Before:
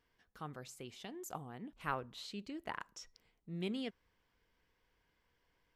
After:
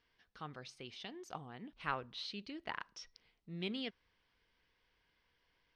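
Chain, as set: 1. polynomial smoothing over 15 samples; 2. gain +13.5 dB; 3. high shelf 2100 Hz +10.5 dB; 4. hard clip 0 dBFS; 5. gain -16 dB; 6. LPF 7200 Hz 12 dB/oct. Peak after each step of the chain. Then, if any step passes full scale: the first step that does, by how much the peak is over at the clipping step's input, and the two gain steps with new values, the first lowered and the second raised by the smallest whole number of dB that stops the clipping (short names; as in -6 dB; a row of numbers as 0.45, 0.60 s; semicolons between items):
-22.0, -8.5, -4.5, -4.5, -20.5, -20.5 dBFS; no overload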